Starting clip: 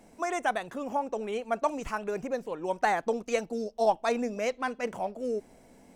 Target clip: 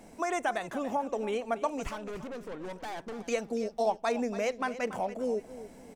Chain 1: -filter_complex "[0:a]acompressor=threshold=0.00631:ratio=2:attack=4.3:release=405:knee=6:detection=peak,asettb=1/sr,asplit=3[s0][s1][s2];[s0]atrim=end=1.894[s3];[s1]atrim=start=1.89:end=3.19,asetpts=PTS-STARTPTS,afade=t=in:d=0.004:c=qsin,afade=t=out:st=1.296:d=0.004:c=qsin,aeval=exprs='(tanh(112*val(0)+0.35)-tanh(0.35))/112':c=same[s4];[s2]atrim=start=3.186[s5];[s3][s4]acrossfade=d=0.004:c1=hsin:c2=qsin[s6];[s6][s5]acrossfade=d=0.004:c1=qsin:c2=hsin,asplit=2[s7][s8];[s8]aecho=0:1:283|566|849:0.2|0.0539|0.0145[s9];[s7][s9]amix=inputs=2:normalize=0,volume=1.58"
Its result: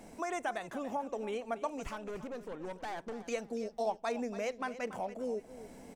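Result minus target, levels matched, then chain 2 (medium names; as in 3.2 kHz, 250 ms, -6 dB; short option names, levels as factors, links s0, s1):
compression: peak gain reduction +5.5 dB
-filter_complex "[0:a]acompressor=threshold=0.0224:ratio=2:attack=4.3:release=405:knee=6:detection=peak,asettb=1/sr,asplit=3[s0][s1][s2];[s0]atrim=end=1.894[s3];[s1]atrim=start=1.89:end=3.19,asetpts=PTS-STARTPTS,afade=t=in:d=0.004:c=qsin,afade=t=out:st=1.296:d=0.004:c=qsin,aeval=exprs='(tanh(112*val(0)+0.35)-tanh(0.35))/112':c=same[s4];[s2]atrim=start=3.186[s5];[s3][s4]acrossfade=d=0.004:c1=hsin:c2=qsin[s6];[s6][s5]acrossfade=d=0.004:c1=qsin:c2=hsin,asplit=2[s7][s8];[s8]aecho=0:1:283|566|849:0.2|0.0539|0.0145[s9];[s7][s9]amix=inputs=2:normalize=0,volume=1.58"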